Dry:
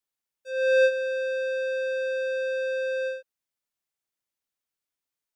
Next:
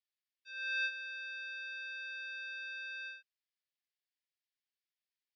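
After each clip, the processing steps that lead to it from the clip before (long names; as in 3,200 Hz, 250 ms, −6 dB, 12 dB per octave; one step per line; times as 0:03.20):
elliptic band-pass filter 1,700–5,100 Hz, stop band 40 dB
level −3 dB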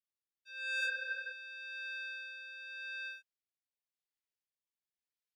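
leveller curve on the samples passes 1
healed spectral selection 0:00.82–0:01.30, 470–2,600 Hz before
rotating-speaker cabinet horn 0.9 Hz
level −2 dB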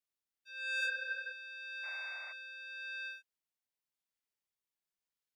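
sound drawn into the spectrogram noise, 0:01.83–0:02.33, 570–2,400 Hz −55 dBFS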